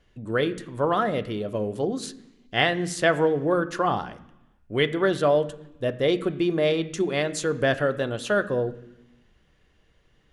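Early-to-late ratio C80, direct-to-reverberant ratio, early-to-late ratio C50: 17.5 dB, 9.0 dB, 16.0 dB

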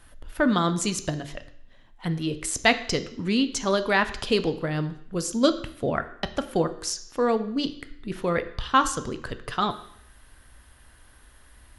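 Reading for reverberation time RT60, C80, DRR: 0.65 s, 16.0 dB, 10.0 dB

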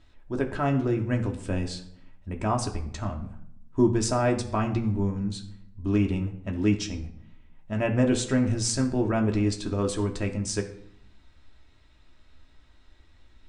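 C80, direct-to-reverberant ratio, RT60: 14.0 dB, 1.5 dB, 0.70 s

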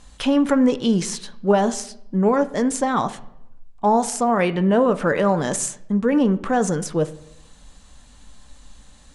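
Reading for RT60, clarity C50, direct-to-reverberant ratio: 0.80 s, 16.5 dB, 11.0 dB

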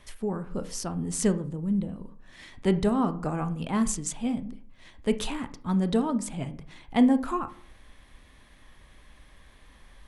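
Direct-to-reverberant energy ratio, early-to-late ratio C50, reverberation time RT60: 10.5 dB, 15.5 dB, 0.50 s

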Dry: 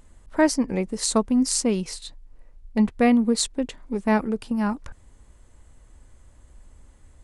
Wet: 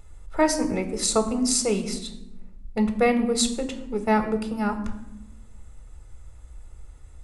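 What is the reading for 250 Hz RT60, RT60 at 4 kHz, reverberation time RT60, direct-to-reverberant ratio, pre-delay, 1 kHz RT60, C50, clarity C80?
1.5 s, 0.60 s, 0.95 s, 8.0 dB, 3 ms, 0.90 s, 11.5 dB, 13.5 dB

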